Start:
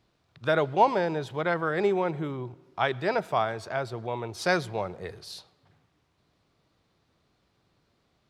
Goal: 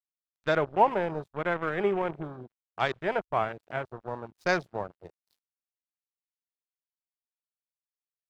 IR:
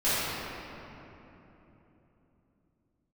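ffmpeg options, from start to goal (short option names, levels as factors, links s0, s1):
-af "aeval=exprs='sgn(val(0))*max(abs(val(0))-0.0168,0)':c=same,afwtdn=0.01"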